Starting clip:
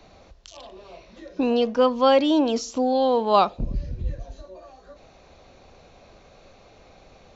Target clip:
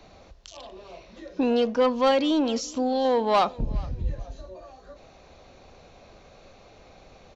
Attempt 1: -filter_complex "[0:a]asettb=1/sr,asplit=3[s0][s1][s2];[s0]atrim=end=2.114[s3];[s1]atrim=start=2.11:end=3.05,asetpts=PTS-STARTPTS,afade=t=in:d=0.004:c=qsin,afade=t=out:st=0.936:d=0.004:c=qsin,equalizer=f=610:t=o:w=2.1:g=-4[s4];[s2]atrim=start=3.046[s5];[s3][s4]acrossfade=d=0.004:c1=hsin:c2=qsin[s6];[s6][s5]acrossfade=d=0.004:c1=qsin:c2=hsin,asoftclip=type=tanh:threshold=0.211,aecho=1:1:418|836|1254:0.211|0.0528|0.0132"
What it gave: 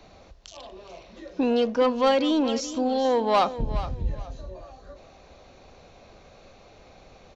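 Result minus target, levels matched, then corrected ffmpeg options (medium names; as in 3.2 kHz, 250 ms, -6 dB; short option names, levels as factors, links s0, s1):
echo-to-direct +9.5 dB
-filter_complex "[0:a]asettb=1/sr,asplit=3[s0][s1][s2];[s0]atrim=end=2.114[s3];[s1]atrim=start=2.11:end=3.05,asetpts=PTS-STARTPTS,afade=t=in:d=0.004:c=qsin,afade=t=out:st=0.936:d=0.004:c=qsin,equalizer=f=610:t=o:w=2.1:g=-4[s4];[s2]atrim=start=3.046[s5];[s3][s4]acrossfade=d=0.004:c1=hsin:c2=qsin[s6];[s6][s5]acrossfade=d=0.004:c1=qsin:c2=hsin,asoftclip=type=tanh:threshold=0.211,aecho=1:1:418|836:0.0708|0.0177"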